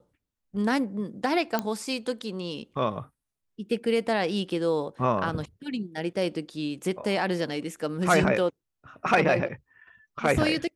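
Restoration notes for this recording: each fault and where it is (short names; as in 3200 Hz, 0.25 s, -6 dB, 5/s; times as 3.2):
1.59 pop -12 dBFS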